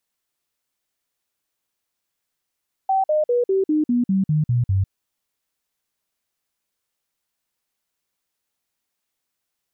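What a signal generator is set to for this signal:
stepped sweep 770 Hz down, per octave 3, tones 10, 0.15 s, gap 0.05 s −15.5 dBFS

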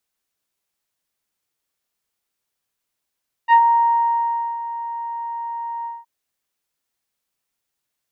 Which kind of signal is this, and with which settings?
subtractive voice saw A#5 24 dB per octave, low-pass 940 Hz, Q 0.74, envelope 1.5 octaves, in 0.12 s, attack 48 ms, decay 1.05 s, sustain −14 dB, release 0.20 s, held 2.37 s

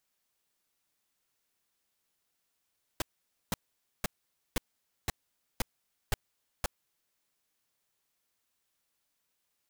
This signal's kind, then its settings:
noise bursts pink, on 0.02 s, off 0.50 s, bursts 8, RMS −28.5 dBFS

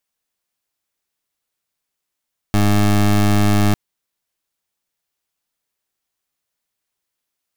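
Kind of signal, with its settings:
pulse wave 103 Hz, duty 21% −13.5 dBFS 1.20 s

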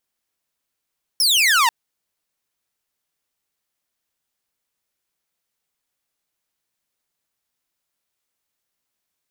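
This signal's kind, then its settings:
single falling chirp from 5,600 Hz, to 880 Hz, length 0.49 s saw, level −10.5 dB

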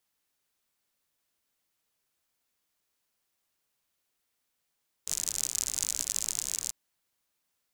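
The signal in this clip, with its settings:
rain-like ticks over hiss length 1.64 s, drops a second 66, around 7,000 Hz, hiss −18.5 dB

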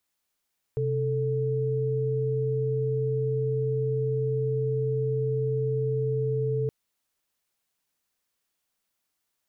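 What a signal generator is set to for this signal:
held notes C3/A4 sine, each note −26.5 dBFS 5.92 s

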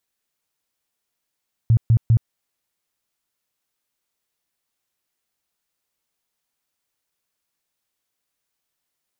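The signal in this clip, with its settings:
tone bursts 114 Hz, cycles 8, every 0.20 s, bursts 3, −10.5 dBFS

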